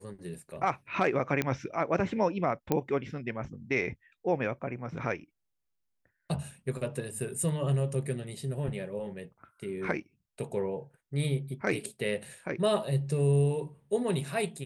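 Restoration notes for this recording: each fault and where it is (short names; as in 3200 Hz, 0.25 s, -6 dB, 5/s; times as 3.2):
1.42 pop -14 dBFS
2.72 pop -13 dBFS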